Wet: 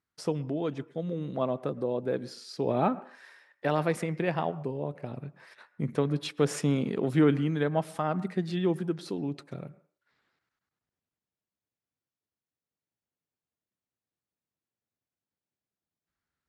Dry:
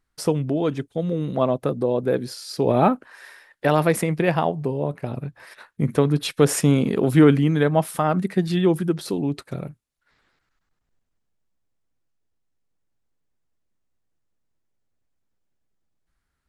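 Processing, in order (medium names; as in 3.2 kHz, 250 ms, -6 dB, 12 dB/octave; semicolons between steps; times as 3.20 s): band-pass 100–7300 Hz; on a send: reverberation RT60 0.45 s, pre-delay 107 ms, DRR 18 dB; on the sum: trim -8.5 dB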